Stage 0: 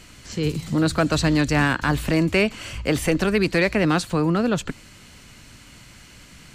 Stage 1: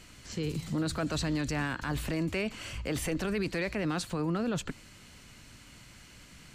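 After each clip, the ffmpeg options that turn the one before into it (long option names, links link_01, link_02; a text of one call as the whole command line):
ffmpeg -i in.wav -af "alimiter=limit=-17.5dB:level=0:latency=1:release=19,volume=-6.5dB" out.wav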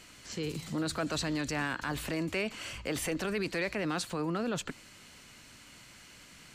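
ffmpeg -i in.wav -af "lowshelf=frequency=170:gain=-11,volume=1dB" out.wav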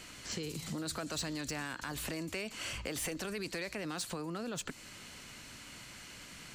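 ffmpeg -i in.wav -filter_complex "[0:a]acrossover=split=4800[link_01][link_02];[link_01]acompressor=threshold=-41dB:ratio=6[link_03];[link_02]asoftclip=type=tanh:threshold=-37.5dB[link_04];[link_03][link_04]amix=inputs=2:normalize=0,volume=3.5dB" out.wav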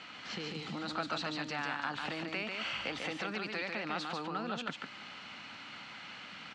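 ffmpeg -i in.wav -filter_complex "[0:a]crystalizer=i=3.5:c=0,highpass=160,equalizer=frequency=210:width_type=q:width=4:gain=3,equalizer=frequency=390:width_type=q:width=4:gain=-4,equalizer=frequency=810:width_type=q:width=4:gain=9,equalizer=frequency=1300:width_type=q:width=4:gain=7,lowpass=frequency=3500:width=0.5412,lowpass=frequency=3500:width=1.3066,asplit=2[link_01][link_02];[link_02]aecho=0:1:145:0.631[link_03];[link_01][link_03]amix=inputs=2:normalize=0,volume=-1.5dB" out.wav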